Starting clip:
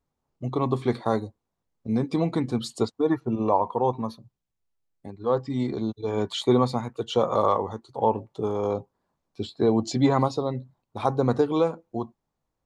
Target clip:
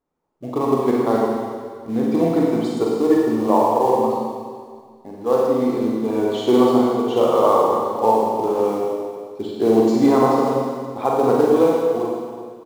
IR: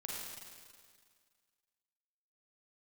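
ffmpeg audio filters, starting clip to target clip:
-filter_complex "[0:a]firequalizer=gain_entry='entry(110,0);entry(290,13);entry(3800,2)':delay=0.05:min_phase=1,asplit=2[link_01][link_02];[link_02]acrusher=bits=3:mode=log:mix=0:aa=0.000001,volume=-9dB[link_03];[link_01][link_03]amix=inputs=2:normalize=0[link_04];[1:a]atrim=start_sample=2205[link_05];[link_04][link_05]afir=irnorm=-1:irlink=0,volume=-6dB"

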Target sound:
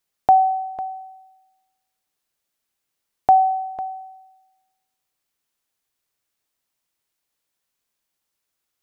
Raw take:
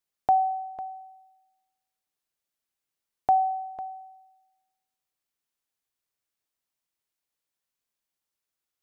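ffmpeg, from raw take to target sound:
ffmpeg -i in.wav -af "volume=7.5dB" out.wav

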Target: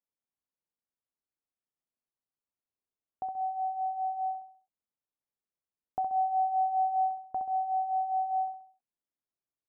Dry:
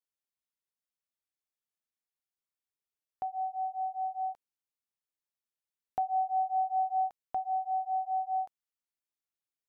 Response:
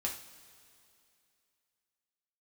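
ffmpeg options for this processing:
-af "lowpass=1100,equalizer=frequency=260:width_type=o:width=0.77:gain=3,aecho=1:1:66|132|198|264|330:0.473|0.199|0.0835|0.0351|0.0147"

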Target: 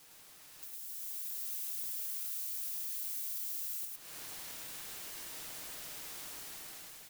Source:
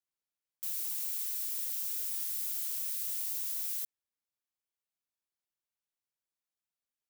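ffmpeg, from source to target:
ffmpeg -i in.wav -filter_complex "[0:a]aeval=exprs='val(0)+0.5*0.00398*sgn(val(0))':channel_layout=same,acompressor=threshold=-49dB:ratio=8,aecho=1:1:6.4:0.65,aeval=exprs='val(0)*sin(2*PI*600*n/s)':channel_layout=same,asplit=2[link_01][link_02];[link_02]aecho=0:1:106:0.708[link_03];[link_01][link_03]amix=inputs=2:normalize=0,dynaudnorm=framelen=390:gausssize=5:maxgain=11.5dB" out.wav

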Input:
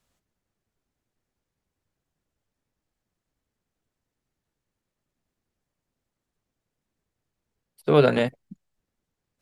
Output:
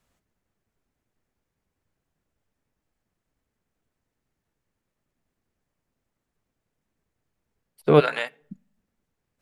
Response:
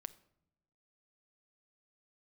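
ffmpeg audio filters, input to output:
-filter_complex "[0:a]asplit=3[link_01][link_02][link_03];[link_01]afade=type=out:start_time=7.99:duration=0.02[link_04];[link_02]highpass=1100,afade=type=in:start_time=7.99:duration=0.02,afade=type=out:start_time=8.4:duration=0.02[link_05];[link_03]afade=type=in:start_time=8.4:duration=0.02[link_06];[link_04][link_05][link_06]amix=inputs=3:normalize=0,asplit=2[link_07][link_08];[link_08]equalizer=frequency=2700:width_type=o:width=1.5:gain=5[link_09];[1:a]atrim=start_sample=2205,asetrate=61740,aresample=44100,lowpass=3100[link_10];[link_09][link_10]afir=irnorm=-1:irlink=0,volume=-1.5dB[link_11];[link_07][link_11]amix=inputs=2:normalize=0"

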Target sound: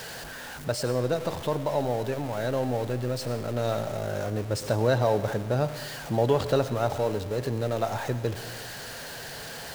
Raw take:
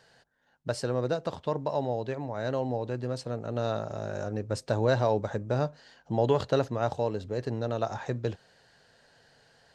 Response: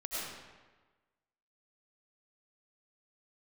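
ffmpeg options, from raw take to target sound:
-filter_complex "[0:a]aeval=exprs='val(0)+0.5*0.0178*sgn(val(0))':channel_layout=same,asplit=2[link_01][link_02];[link_02]highshelf=frequency=7600:gain=11[link_03];[1:a]atrim=start_sample=2205[link_04];[link_03][link_04]afir=irnorm=-1:irlink=0,volume=-15dB[link_05];[link_01][link_05]amix=inputs=2:normalize=0"

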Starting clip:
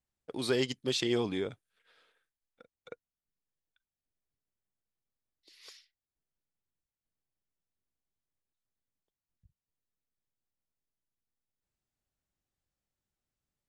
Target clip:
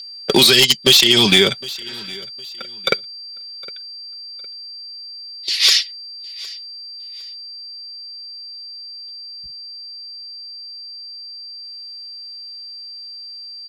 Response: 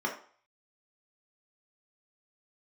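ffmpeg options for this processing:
-filter_complex "[0:a]acrossover=split=180|3000[link_01][link_02][link_03];[link_02]acompressor=threshold=-37dB:ratio=6[link_04];[link_01][link_04][link_03]amix=inputs=3:normalize=0,aeval=exprs='val(0)+0.00126*sin(2*PI*4700*n/s)':channel_layout=same,equalizer=frequency=3500:width_type=o:width=2.7:gain=15,acompressor=threshold=-37dB:ratio=4,volume=32dB,asoftclip=hard,volume=-32dB,agate=range=-13dB:threshold=-43dB:ratio=16:detection=peak,highshelf=frequency=7900:gain=6,aecho=1:1:5.2:0.6,aecho=1:1:760|1520:0.075|0.0225,alimiter=level_in=29dB:limit=-1dB:release=50:level=0:latency=1,volume=-1dB"

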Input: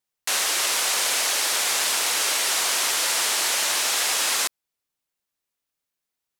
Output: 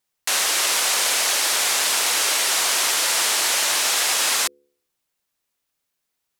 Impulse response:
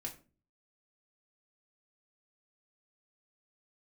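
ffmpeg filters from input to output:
-filter_complex "[0:a]bandreject=frequency=71.69:width_type=h:width=4,bandreject=frequency=143.38:width_type=h:width=4,bandreject=frequency=215.07:width_type=h:width=4,bandreject=frequency=286.76:width_type=h:width=4,bandreject=frequency=358.45:width_type=h:width=4,bandreject=frequency=430.14:width_type=h:width=4,bandreject=frequency=501.83:width_type=h:width=4,asplit=2[link_01][link_02];[link_02]alimiter=limit=-22dB:level=0:latency=1:release=315,volume=0dB[link_03];[link_01][link_03]amix=inputs=2:normalize=0"

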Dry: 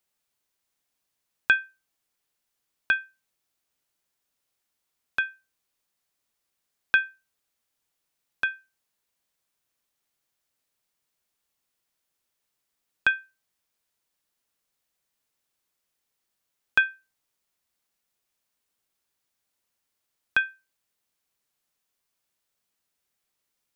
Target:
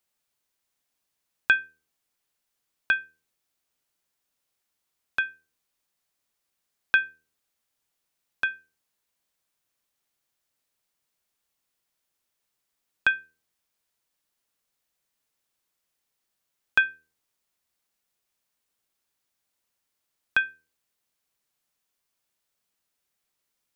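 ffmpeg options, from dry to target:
ffmpeg -i in.wav -af "bandreject=frequency=80.05:width_type=h:width=4,bandreject=frequency=160.1:width_type=h:width=4,bandreject=frequency=240.15:width_type=h:width=4,bandreject=frequency=320.2:width_type=h:width=4,bandreject=frequency=400.25:width_type=h:width=4,bandreject=frequency=480.3:width_type=h:width=4" out.wav

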